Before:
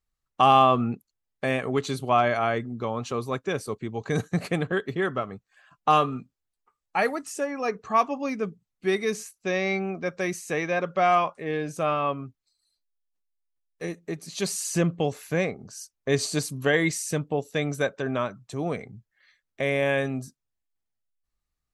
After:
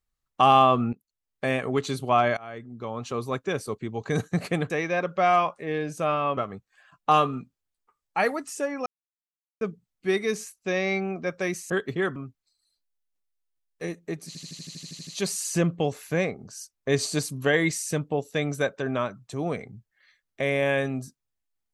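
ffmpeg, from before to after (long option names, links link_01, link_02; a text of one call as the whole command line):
ffmpeg -i in.wav -filter_complex "[0:a]asplit=19[link_01][link_02][link_03][link_04][link_05][link_06][link_07][link_08][link_09][link_10][link_11][link_12][link_13][link_14][link_15][link_16][link_17][link_18][link_19];[link_01]atrim=end=0.93,asetpts=PTS-STARTPTS,afade=type=out:start_time=0.926:duration=0.004:curve=hsin:silence=0.158489[link_20];[link_02]atrim=start=0.93:end=2.37,asetpts=PTS-STARTPTS,afade=type=in:duration=0.53:silence=0.158489,afade=type=out:start_time=1.436:duration=0.004:curve=hsin:silence=0.0749894[link_21];[link_03]atrim=start=2.37:end=4.702,asetpts=PTS-STARTPTS,afade=type=in:duration=0.89:silence=0.0749894[link_22];[link_04]atrim=start=10.488:end=12.162[link_23];[link_05]atrim=start=5.158:end=7.65,asetpts=PTS-STARTPTS,afade=type=out:start_time=2.488:duration=0.004:curve=hsin[link_24];[link_06]atrim=start=7.65:end=8.4,asetpts=PTS-STARTPTS,volume=0[link_25];[link_07]atrim=start=8.4:end=10.492,asetpts=PTS-STARTPTS,afade=type=in:duration=0.004:curve=hsin[link_26];[link_08]atrim=start=4.698:end=5.162[link_27];[link_09]atrim=start=12.158:end=14.352[link_28];[link_10]atrim=start=14.268:end=14.352[link_29];[link_11]atrim=start=14.268:end=14.352[link_30];[link_12]atrim=start=14.268:end=14.352[link_31];[link_13]atrim=start=14.268:end=14.352[link_32];[link_14]atrim=start=14.268:end=14.352[link_33];[link_15]atrim=start=14.268:end=14.352[link_34];[link_16]atrim=start=14.268:end=14.352[link_35];[link_17]atrim=start=14.268:end=14.352[link_36];[link_18]atrim=start=14.268:end=14.352[link_37];[link_19]atrim=start=14.268[link_38];[link_20][link_21][link_22]concat=n=3:v=0:a=1[link_39];[link_39][link_23]acrossfade=duration=0.004:curve1=hsin:curve2=hsin[link_40];[link_24][link_25][link_26]concat=n=3:v=0:a=1[link_41];[link_40][link_41]acrossfade=duration=0.004:curve1=hsin:curve2=hsin[link_42];[link_42][link_27]acrossfade=duration=0.004:curve1=hsin:curve2=hsin[link_43];[link_43][link_28]acrossfade=duration=0.004:curve1=hsin:curve2=hsin[link_44];[link_44][link_29]acrossfade=duration=0.004:curve1=hsin:curve2=hsin[link_45];[link_45][link_30]acrossfade=duration=0.004:curve1=hsin:curve2=hsin[link_46];[link_46][link_31]acrossfade=duration=0.004:curve1=hsin:curve2=hsin[link_47];[link_47][link_32]acrossfade=duration=0.004:curve1=hsin:curve2=hsin[link_48];[link_48][link_33]acrossfade=duration=0.004:curve1=hsin:curve2=hsin[link_49];[link_49][link_34]acrossfade=duration=0.004:curve1=hsin:curve2=hsin[link_50];[link_50][link_35]acrossfade=duration=0.004:curve1=hsin:curve2=hsin[link_51];[link_51][link_36]acrossfade=duration=0.004:curve1=hsin:curve2=hsin[link_52];[link_52][link_37]acrossfade=duration=0.004:curve1=hsin:curve2=hsin[link_53];[link_53][link_38]acrossfade=duration=0.004:curve1=hsin:curve2=hsin" out.wav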